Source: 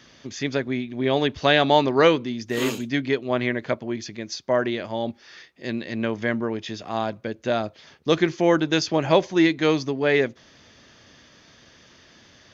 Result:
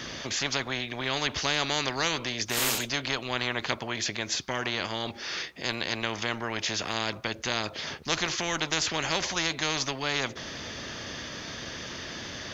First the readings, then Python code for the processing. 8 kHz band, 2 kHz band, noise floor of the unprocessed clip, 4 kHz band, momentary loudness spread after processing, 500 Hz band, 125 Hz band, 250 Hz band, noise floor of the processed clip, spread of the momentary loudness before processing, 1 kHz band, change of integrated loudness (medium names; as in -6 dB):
+8.0 dB, -2.0 dB, -53 dBFS, +1.5 dB, 10 LU, -13.0 dB, -7.5 dB, -12.5 dB, -44 dBFS, 13 LU, -6.0 dB, -6.5 dB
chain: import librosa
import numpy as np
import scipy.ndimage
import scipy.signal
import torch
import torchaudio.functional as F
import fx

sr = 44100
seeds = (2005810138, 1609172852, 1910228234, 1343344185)

y = fx.spectral_comp(x, sr, ratio=4.0)
y = F.gain(torch.from_numpy(y), -5.0).numpy()